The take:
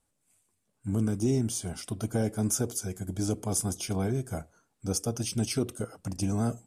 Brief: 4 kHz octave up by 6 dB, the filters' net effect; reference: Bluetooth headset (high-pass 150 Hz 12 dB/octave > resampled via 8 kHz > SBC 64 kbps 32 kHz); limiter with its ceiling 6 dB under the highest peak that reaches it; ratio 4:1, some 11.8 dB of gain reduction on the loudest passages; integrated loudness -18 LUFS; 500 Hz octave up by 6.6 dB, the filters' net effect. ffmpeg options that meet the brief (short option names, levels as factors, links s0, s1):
-af "equalizer=f=500:t=o:g=8.5,equalizer=f=4000:t=o:g=8.5,acompressor=threshold=0.02:ratio=4,alimiter=level_in=1.58:limit=0.0631:level=0:latency=1,volume=0.631,highpass=150,aresample=8000,aresample=44100,volume=15" -ar 32000 -c:a sbc -b:a 64k